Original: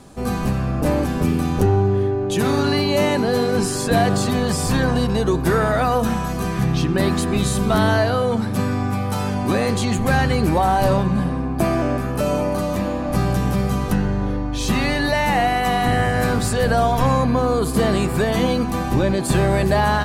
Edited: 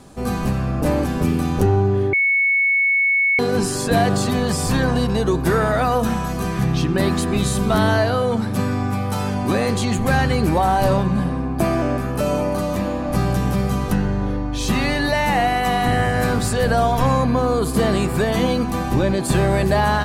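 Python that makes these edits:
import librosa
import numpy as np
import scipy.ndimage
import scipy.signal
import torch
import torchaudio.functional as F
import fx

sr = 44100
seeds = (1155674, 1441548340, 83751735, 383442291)

y = fx.edit(x, sr, fx.bleep(start_s=2.13, length_s=1.26, hz=2210.0, db=-14.0), tone=tone)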